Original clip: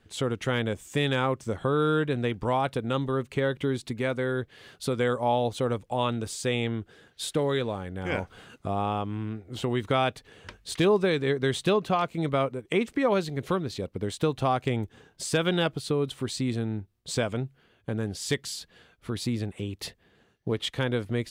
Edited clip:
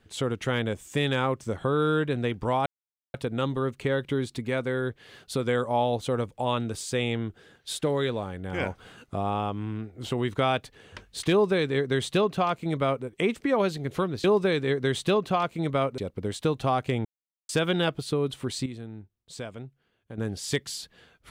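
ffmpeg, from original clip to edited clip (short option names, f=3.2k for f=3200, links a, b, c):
-filter_complex "[0:a]asplit=8[a][b][c][d][e][f][g][h];[a]atrim=end=2.66,asetpts=PTS-STARTPTS,afade=t=out:st=2.656:d=0.004:c=hsin,apad=pad_dur=0.48[i];[b]atrim=start=2.66:end=13.762,asetpts=PTS-STARTPTS,afade=t=in:d=0.004:c=hsin[j];[c]atrim=start=10.828:end=12.572[k];[d]atrim=start=13.758:end=14.83,asetpts=PTS-STARTPTS,afade=t=out:st=1.068:d=0.004:c=hsin[l];[e]atrim=start=14.83:end=15.27,asetpts=PTS-STARTPTS,volume=0[m];[f]atrim=start=15.27:end=16.442,asetpts=PTS-STARTPTS,afade=t=in:d=0.004:c=hsin[n];[g]atrim=start=16.438:end=17.962,asetpts=PTS-STARTPTS,volume=-10dB[o];[h]atrim=start=17.958[p];[i][j]concat=n=2:v=0:a=1[q];[q][k]acrossfade=d=0.004:c1=hsin:c2=hsin[r];[l][m][n]concat=n=3:v=0:a=1[s];[r][s]acrossfade=d=0.004:c1=hsin:c2=hsin[t];[t][o]acrossfade=d=0.004:c1=hsin:c2=hsin[u];[u][p]acrossfade=d=0.004:c1=hsin:c2=hsin"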